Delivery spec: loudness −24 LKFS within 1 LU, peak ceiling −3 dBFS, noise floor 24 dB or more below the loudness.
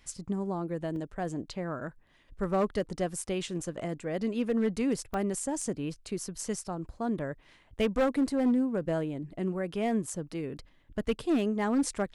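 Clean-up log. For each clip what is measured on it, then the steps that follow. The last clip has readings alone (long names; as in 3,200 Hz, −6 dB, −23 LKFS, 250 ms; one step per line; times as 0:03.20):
share of clipped samples 0.8%; peaks flattened at −21.0 dBFS; number of dropouts 2; longest dropout 2.1 ms; integrated loudness −32.0 LKFS; sample peak −21.0 dBFS; target loudness −24.0 LKFS
→ clipped peaks rebuilt −21 dBFS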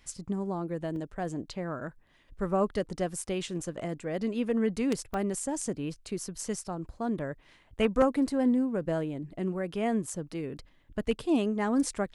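share of clipped samples 0.0%; number of dropouts 2; longest dropout 2.1 ms
→ repair the gap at 0:00.96/0:05.14, 2.1 ms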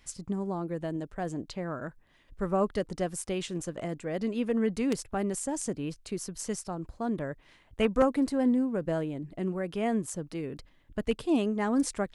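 number of dropouts 0; integrated loudness −31.5 LKFS; sample peak −12.0 dBFS; target loudness −24.0 LKFS
→ level +7.5 dB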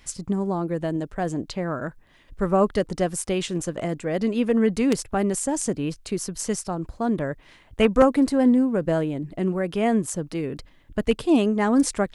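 integrated loudness −24.0 LKFS; sample peak −4.5 dBFS; background noise floor −54 dBFS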